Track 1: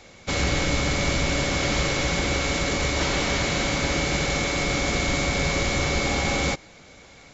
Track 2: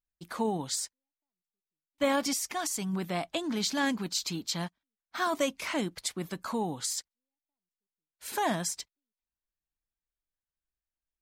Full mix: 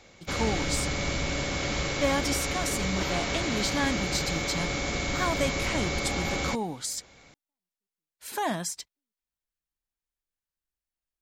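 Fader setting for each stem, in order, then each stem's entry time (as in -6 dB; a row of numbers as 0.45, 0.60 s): -6.0, 0.0 dB; 0.00, 0.00 s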